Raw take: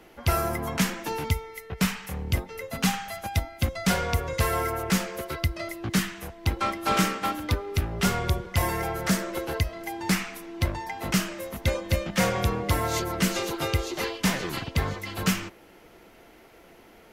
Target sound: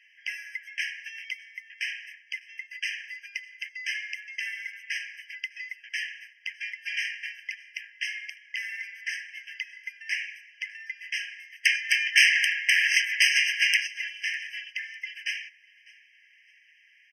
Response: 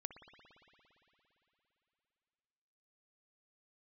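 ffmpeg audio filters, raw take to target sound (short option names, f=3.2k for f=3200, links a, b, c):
-filter_complex "[0:a]lowpass=3.3k,equalizer=f=250:w=2.7:g=10,asplit=3[a][b][c];[a]afade=t=out:st=11.63:d=0.02[d];[b]aeval=exprs='0.266*sin(PI/2*3.98*val(0)/0.266)':c=same,afade=t=in:st=11.63:d=0.02,afade=t=out:st=13.86:d=0.02[e];[c]afade=t=in:st=13.86:d=0.02[f];[d][e][f]amix=inputs=3:normalize=0,aecho=1:1:602|1204:0.0668|0.0234,afftfilt=real='re*eq(mod(floor(b*sr/1024/1600),2),1)':imag='im*eq(mod(floor(b*sr/1024/1600),2),1)':win_size=1024:overlap=0.75,volume=3dB"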